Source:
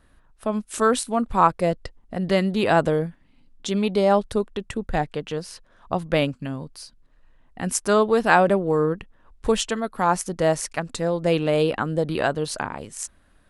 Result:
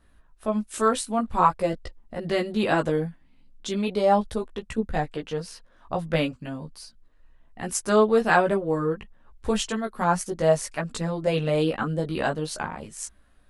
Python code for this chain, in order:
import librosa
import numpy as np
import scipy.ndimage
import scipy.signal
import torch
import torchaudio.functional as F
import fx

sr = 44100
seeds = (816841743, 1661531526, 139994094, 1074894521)

y = fx.chorus_voices(x, sr, voices=6, hz=0.38, base_ms=16, depth_ms=3.1, mix_pct=45)